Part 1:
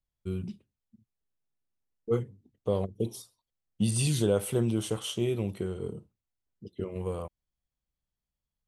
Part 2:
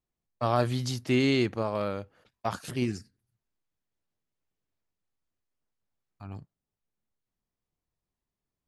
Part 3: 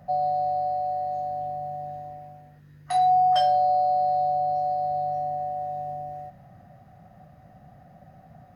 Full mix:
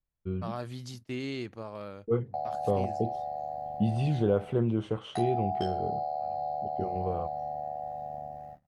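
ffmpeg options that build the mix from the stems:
-filter_complex "[0:a]lowpass=1.9k,volume=0dB[a];[1:a]volume=-10.5dB[b];[2:a]tremolo=f=75:d=0.857,adelay=2250,volume=-2.5dB[c];[b][c]amix=inputs=2:normalize=0,agate=range=-18dB:threshold=-48dB:ratio=16:detection=peak,acompressor=threshold=-30dB:ratio=4,volume=0dB[d];[a][d]amix=inputs=2:normalize=0"

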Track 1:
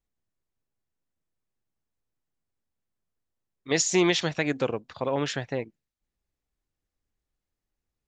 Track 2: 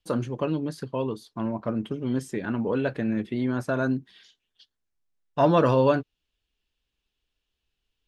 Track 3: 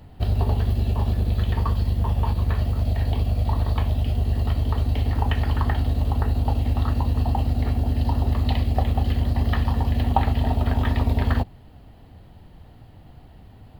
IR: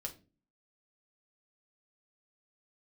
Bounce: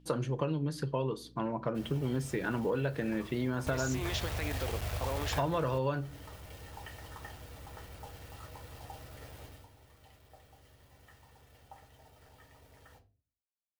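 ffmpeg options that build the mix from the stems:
-filter_complex "[0:a]alimiter=limit=-20dB:level=0:latency=1,volume=-4.5dB,asplit=2[a][b];[1:a]equalizer=f=140:w=5.3:g=14.5,aeval=exprs='val(0)+0.00282*(sin(2*PI*60*n/s)+sin(2*PI*2*60*n/s)/2+sin(2*PI*3*60*n/s)/3+sin(2*PI*4*60*n/s)/4+sin(2*PI*5*60*n/s)/5)':c=same,volume=-1.5dB,asplit=2[c][d];[d]volume=-5dB[e];[2:a]equalizer=f=250:t=o:w=0.67:g=-12,equalizer=f=1k:t=o:w=0.67:g=-5,equalizer=f=4k:t=o:w=0.67:g=-10,acrusher=bits=5:mix=0:aa=0.000001,adelay=1550,volume=-5.5dB,afade=t=out:st=9.43:d=0.24:silence=0.251189,asplit=2[f][g];[g]volume=-8dB[h];[b]apad=whole_len=676627[i];[f][i]sidechaingate=range=-33dB:threshold=-55dB:ratio=16:detection=peak[j];[3:a]atrim=start_sample=2205[k];[e][h]amix=inputs=2:normalize=0[l];[l][k]afir=irnorm=-1:irlink=0[m];[a][c][j][m]amix=inputs=4:normalize=0,lowshelf=f=210:g=-11.5,acompressor=threshold=-28dB:ratio=8"

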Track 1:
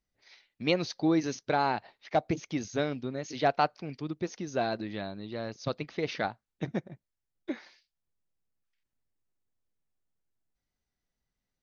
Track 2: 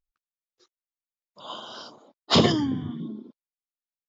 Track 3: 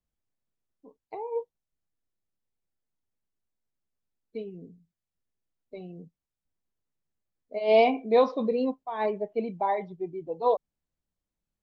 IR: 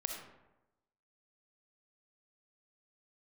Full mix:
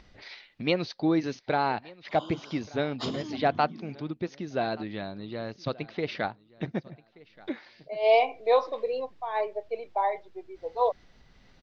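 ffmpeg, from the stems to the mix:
-filter_complex "[0:a]lowpass=f=4.7k:w=0.5412,lowpass=f=4.7k:w=1.3066,acompressor=mode=upward:threshold=-35dB:ratio=2.5,volume=1dB,asplit=3[a][b][c];[b]volume=-22.5dB[d];[1:a]acompressor=threshold=-30dB:ratio=2,adelay=700,volume=-8.5dB[e];[2:a]highpass=f=470:w=0.5412,highpass=f=470:w=1.3066,adelay=350,volume=0.5dB[f];[c]apad=whole_len=527904[g];[f][g]sidechaincompress=threshold=-40dB:ratio=8:attack=12:release=623[h];[d]aecho=0:1:1178|2356|3534:1|0.21|0.0441[i];[a][e][h][i]amix=inputs=4:normalize=0"

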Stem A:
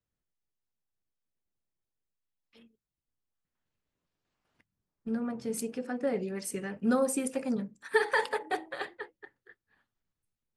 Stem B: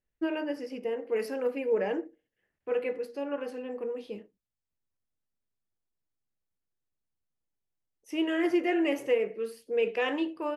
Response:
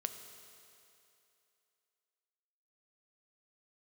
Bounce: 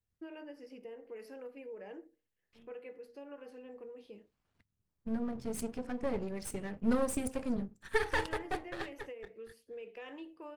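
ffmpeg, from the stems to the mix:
-filter_complex "[0:a]aeval=exprs='if(lt(val(0),0),0.251*val(0),val(0))':c=same,equalizer=f=74:t=o:w=2.1:g=11.5,volume=-2dB[a];[1:a]alimiter=limit=-20.5dB:level=0:latency=1:release=274,acompressor=threshold=-36dB:ratio=2.5,volume=-10.5dB[b];[a][b]amix=inputs=2:normalize=0"

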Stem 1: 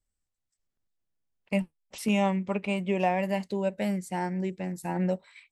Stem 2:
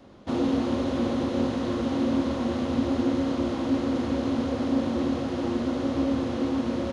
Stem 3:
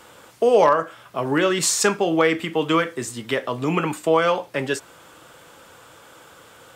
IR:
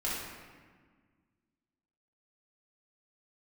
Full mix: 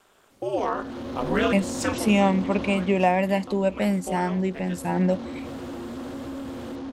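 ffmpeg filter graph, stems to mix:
-filter_complex "[0:a]volume=-5dB,asplit=2[a][b];[1:a]alimiter=limit=-20dB:level=0:latency=1:release=25,asoftclip=type=tanh:threshold=-26.5dB,adelay=300,volume=-2.5dB,afade=t=out:st=2.63:d=0.45:silence=0.266073,afade=t=in:st=4.65:d=0.41:silence=0.398107[c];[2:a]aeval=exprs='val(0)*sin(2*PI*110*n/s)':c=same,volume=-10.5dB[d];[b]apad=whole_len=297950[e];[d][e]sidechaincompress=threshold=-52dB:ratio=4:attack=9.8:release=223[f];[a][c][f]amix=inputs=3:normalize=0,dynaudnorm=f=650:g=3:m=10.5dB"

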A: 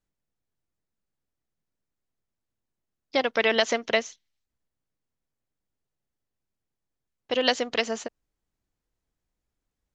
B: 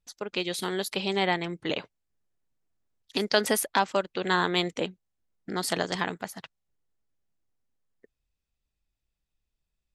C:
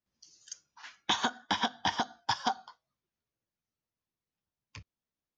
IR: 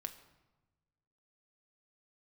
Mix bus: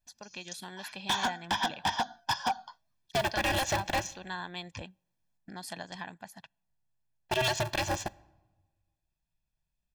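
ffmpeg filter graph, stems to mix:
-filter_complex "[0:a]agate=range=-13dB:threshold=-43dB:ratio=16:detection=peak,alimiter=limit=-15dB:level=0:latency=1:release=40,aeval=exprs='val(0)*sgn(sin(2*PI*130*n/s))':c=same,volume=-3.5dB,asplit=2[a][b];[b]volume=-7dB[c];[1:a]acompressor=threshold=-45dB:ratio=1.5,volume=-7dB,asplit=2[d][e];[e]volume=-22.5dB[f];[2:a]volume=0.5dB[g];[3:a]atrim=start_sample=2205[h];[c][f]amix=inputs=2:normalize=0[i];[i][h]afir=irnorm=-1:irlink=0[j];[a][d][g][j]amix=inputs=4:normalize=0,aecho=1:1:1.2:0.67,asoftclip=type=hard:threshold=-23.5dB"

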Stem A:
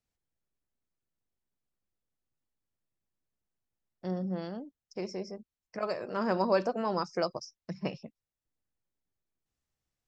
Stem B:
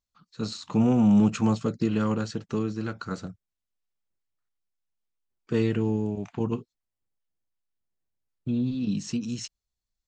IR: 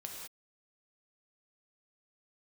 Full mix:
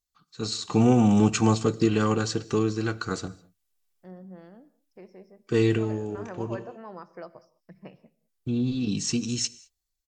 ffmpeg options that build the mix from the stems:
-filter_complex "[0:a]lowpass=2.6k,equalizer=f=1.8k:t=o:w=0.29:g=6,volume=-19dB,asplit=3[a][b][c];[b]volume=-11dB[d];[1:a]aemphasis=mode=production:type=cd,aecho=1:1:2.6:0.42,volume=-4dB,asplit=2[e][f];[f]volume=-12.5dB[g];[c]apad=whole_len=444289[h];[e][h]sidechaincompress=threshold=-56dB:ratio=3:attack=5.7:release=1200[i];[2:a]atrim=start_sample=2205[j];[d][g]amix=inputs=2:normalize=0[k];[k][j]afir=irnorm=-1:irlink=0[l];[a][i][l]amix=inputs=3:normalize=0,dynaudnorm=f=140:g=7:m=7dB"

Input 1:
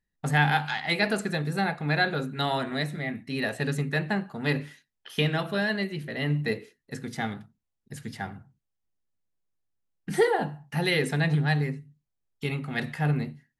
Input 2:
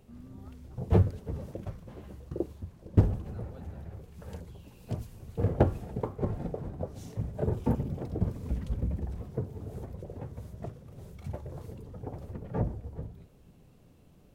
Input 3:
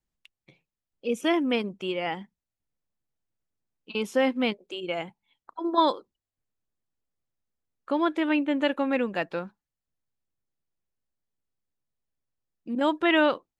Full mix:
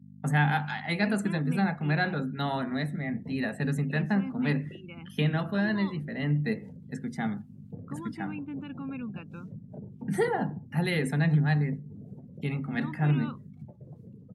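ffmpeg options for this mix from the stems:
-filter_complex "[0:a]highpass=f=210:p=1,equalizer=f=3.7k:w=0.86:g=-6,aeval=exprs='val(0)+0.00501*(sin(2*PI*50*n/s)+sin(2*PI*2*50*n/s)/2+sin(2*PI*3*50*n/s)/3+sin(2*PI*4*50*n/s)/4+sin(2*PI*5*50*n/s)/5)':c=same,volume=-2dB[a];[1:a]acompressor=threshold=-36dB:ratio=6,adelay=2350,volume=-7dB[b];[2:a]aecho=1:1:0.8:0.87,volume=-15.5dB[c];[b][c]amix=inputs=2:normalize=0,alimiter=level_in=9dB:limit=-24dB:level=0:latency=1,volume=-9dB,volume=0dB[d];[a][d]amix=inputs=2:normalize=0,afftdn=nr=16:nf=-52,highpass=f=130:w=0.5412,highpass=f=130:w=1.3066,lowshelf=f=290:t=q:w=1.5:g=7"

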